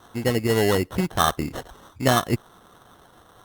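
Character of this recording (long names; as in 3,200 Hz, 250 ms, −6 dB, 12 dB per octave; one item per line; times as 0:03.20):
aliases and images of a low sample rate 2,400 Hz, jitter 0%
Opus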